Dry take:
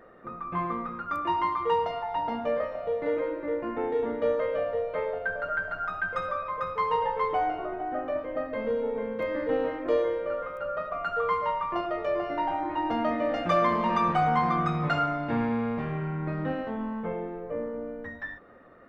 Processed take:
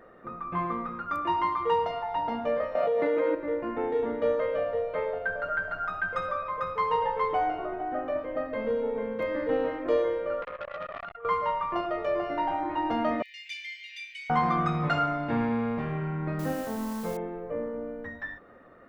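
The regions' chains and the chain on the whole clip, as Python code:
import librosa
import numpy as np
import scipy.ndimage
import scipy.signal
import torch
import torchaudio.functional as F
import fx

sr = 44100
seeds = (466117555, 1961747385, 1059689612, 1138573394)

y = fx.chain(x, sr, fx.highpass(hz=190.0, slope=12),
    fx.env_flatten(amount_pct=100), at=(2.75, 3.35))
y = fx.chain(y, sr, fx.lowpass(hz=2100.0, slope=12),
    fx.over_compress(threshold_db=-33.0, ratio=-0.5),
    fx.transformer_sat(knee_hz=1200.0), at=(10.42, 11.25))
y = fx.chain(y, sr, fx.steep_highpass(hz=2100.0, slope=72),
    fx.doubler(ms=31.0, db=-6.0), at=(13.22, 14.3))
y = fx.chain(y, sr, fx.bessel_lowpass(hz=3000.0, order=8),
    fx.quant_dither(seeds[0], bits=8, dither='triangular'), at=(16.39, 17.17))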